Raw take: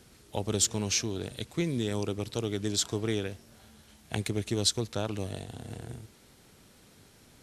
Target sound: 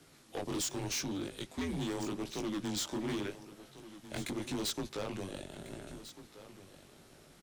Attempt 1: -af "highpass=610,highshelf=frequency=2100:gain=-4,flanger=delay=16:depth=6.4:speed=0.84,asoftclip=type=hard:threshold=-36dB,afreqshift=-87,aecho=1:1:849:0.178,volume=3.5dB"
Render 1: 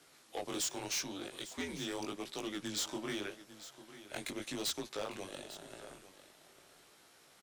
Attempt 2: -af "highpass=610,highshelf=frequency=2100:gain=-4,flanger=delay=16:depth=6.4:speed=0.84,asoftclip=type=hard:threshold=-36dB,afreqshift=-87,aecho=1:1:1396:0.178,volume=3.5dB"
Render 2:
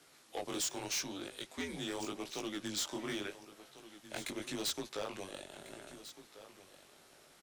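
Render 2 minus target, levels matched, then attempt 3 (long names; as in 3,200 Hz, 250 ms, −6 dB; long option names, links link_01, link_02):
250 Hz band −3.5 dB
-af "highpass=270,highshelf=frequency=2100:gain=-4,flanger=delay=16:depth=6.4:speed=0.84,asoftclip=type=hard:threshold=-36dB,afreqshift=-87,aecho=1:1:1396:0.178,volume=3.5dB"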